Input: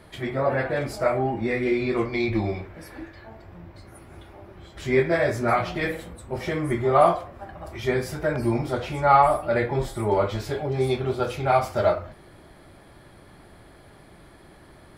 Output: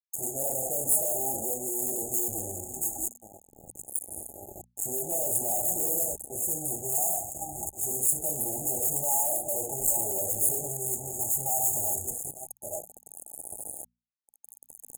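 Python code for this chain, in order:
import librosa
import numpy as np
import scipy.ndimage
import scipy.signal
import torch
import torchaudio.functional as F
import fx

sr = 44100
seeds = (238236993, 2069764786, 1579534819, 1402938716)

p1 = x + 10.0 ** (-14.5 / 20.0) * np.pad(x, (int(870 * sr / 1000.0), 0))[:len(x)]
p2 = fx.phaser_stages(p1, sr, stages=8, low_hz=480.0, high_hz=2200.0, hz=0.24, feedback_pct=10)
p3 = fx.rider(p2, sr, range_db=4, speed_s=2.0)
p4 = p2 + (p3 * 10.0 ** (-2.0 / 20.0))
p5 = fx.tremolo_shape(p4, sr, shape='saw_up', hz=0.65, depth_pct=70)
p6 = fx.fuzz(p5, sr, gain_db=41.0, gate_db=-40.0)
p7 = fx.brickwall_bandstop(p6, sr, low_hz=860.0, high_hz=6500.0)
p8 = librosa.effects.preemphasis(p7, coef=0.97, zi=[0.0])
p9 = fx.hum_notches(p8, sr, base_hz=60, count=4)
y = p9 * 10.0 ** (2.0 / 20.0)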